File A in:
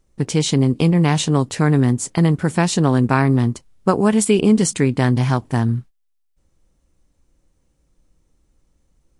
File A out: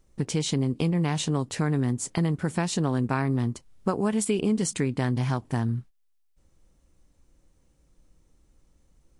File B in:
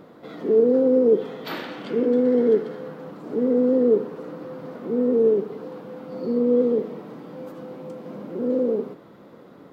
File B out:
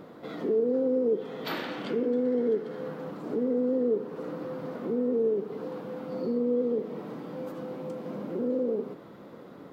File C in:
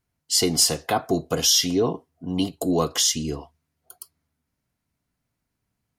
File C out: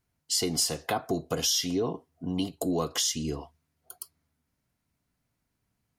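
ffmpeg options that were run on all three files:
-af "acompressor=threshold=-30dB:ratio=2"

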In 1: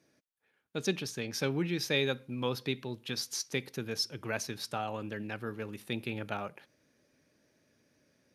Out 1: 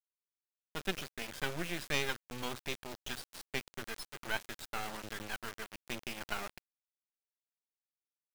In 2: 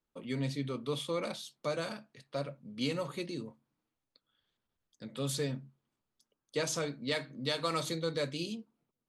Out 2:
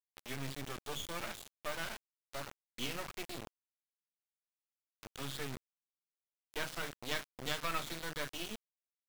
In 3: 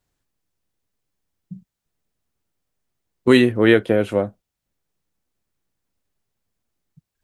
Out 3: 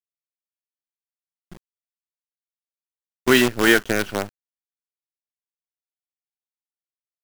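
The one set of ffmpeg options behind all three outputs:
-af "highpass=110,equalizer=f=110:t=q:w=4:g=-5,equalizer=f=180:t=q:w=4:g=-4,equalizer=f=280:t=q:w=4:g=-7,equalizer=f=510:t=q:w=4:g=-10,equalizer=f=1.5k:t=q:w=4:g=8,equalizer=f=3.1k:t=q:w=4:g=5,lowpass=f=3.8k:w=0.5412,lowpass=f=3.8k:w=1.3066,acrusher=bits=4:dc=4:mix=0:aa=0.000001"

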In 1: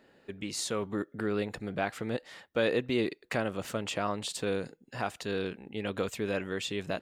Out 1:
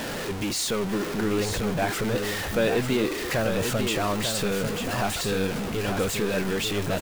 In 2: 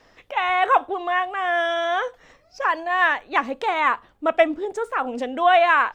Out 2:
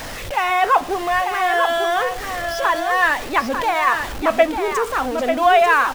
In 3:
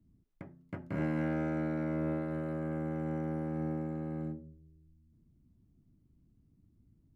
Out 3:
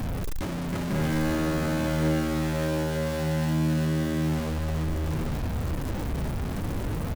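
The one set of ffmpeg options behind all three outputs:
-af "aeval=exprs='val(0)+0.5*0.0447*sgn(val(0))':c=same,lowshelf=f=110:g=5,flanger=delay=1.2:depth=3.8:regen=-64:speed=0.55:shape=sinusoidal,aecho=1:1:893:0.473,volume=5dB"

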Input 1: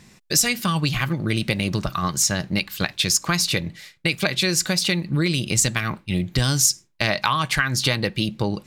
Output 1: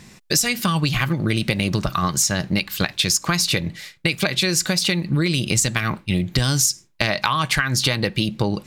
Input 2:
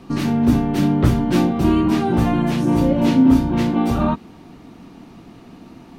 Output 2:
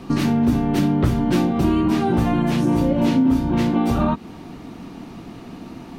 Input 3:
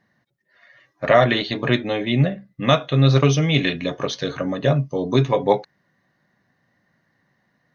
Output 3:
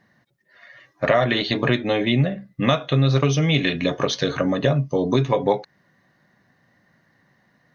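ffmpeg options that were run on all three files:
-af "acompressor=threshold=-22dB:ratio=3,volume=5dB"

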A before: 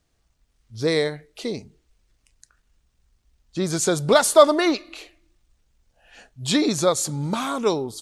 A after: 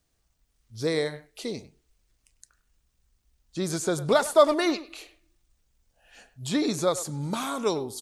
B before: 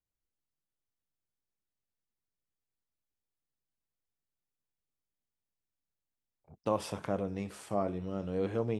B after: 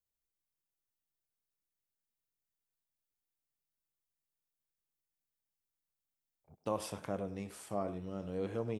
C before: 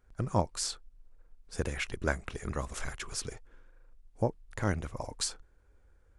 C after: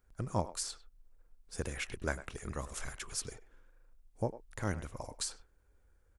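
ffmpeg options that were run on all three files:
-filter_complex "[0:a]highshelf=f=8.4k:g=10.5,acrossover=split=2000[a][b];[b]alimiter=limit=-19dB:level=0:latency=1:release=177[c];[a][c]amix=inputs=2:normalize=0,asplit=2[d][e];[e]adelay=100,highpass=300,lowpass=3.4k,asoftclip=type=hard:threshold=-12dB,volume=-14dB[f];[d][f]amix=inputs=2:normalize=0,volume=-5dB"

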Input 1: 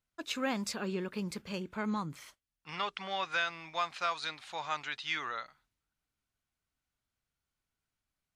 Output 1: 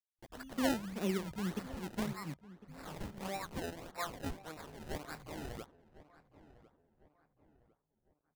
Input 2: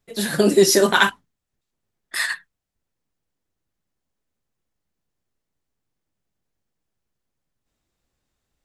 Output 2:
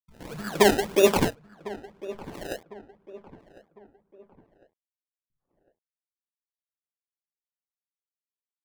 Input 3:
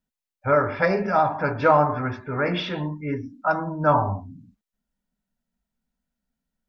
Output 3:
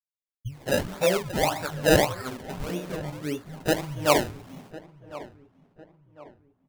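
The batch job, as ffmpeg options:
-filter_complex "[0:a]aemphasis=mode=reproduction:type=riaa,acrossover=split=340|2100[a][b][c];[a]acompressor=threshold=-30dB:ratio=5[d];[d][b][c]amix=inputs=3:normalize=0,acrusher=bits=6:mix=0:aa=0.000001,acrossover=split=1200[e][f];[e]aeval=exprs='val(0)*(1-1/2+1/2*cos(2*PI*2.3*n/s))':c=same[g];[f]aeval=exprs='val(0)*(1-1/2-1/2*cos(2*PI*2.3*n/s))':c=same[h];[g][h]amix=inputs=2:normalize=0,acrossover=split=150|3400[i][j][k];[k]adelay=40[l];[j]adelay=210[m];[i][m][l]amix=inputs=3:normalize=0,acrusher=samples=27:mix=1:aa=0.000001:lfo=1:lforange=27:lforate=1.7,asplit=2[n][o];[o]adelay=1053,lowpass=f=1.7k:p=1,volume=-17dB,asplit=2[p][q];[q]adelay=1053,lowpass=f=1.7k:p=1,volume=0.41,asplit=2[r][s];[s]adelay=1053,lowpass=f=1.7k:p=1,volume=0.41[t];[p][r][t]amix=inputs=3:normalize=0[u];[n][u]amix=inputs=2:normalize=0"

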